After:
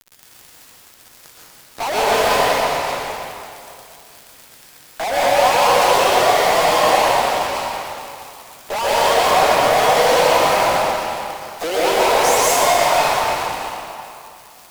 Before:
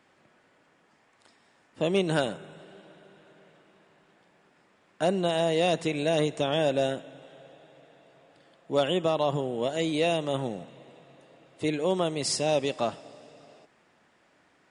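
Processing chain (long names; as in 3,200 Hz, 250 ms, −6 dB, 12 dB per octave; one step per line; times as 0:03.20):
pitch shifter swept by a sawtooth +10.5 semitones, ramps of 277 ms
high-pass filter 620 Hz 24 dB per octave
spectral tilt −3.5 dB per octave
surface crackle 450 per second −52 dBFS
fuzz pedal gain 59 dB, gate −49 dBFS
convolution reverb RT60 2.6 s, pre-delay 115 ms, DRR −7.5 dB
level −8 dB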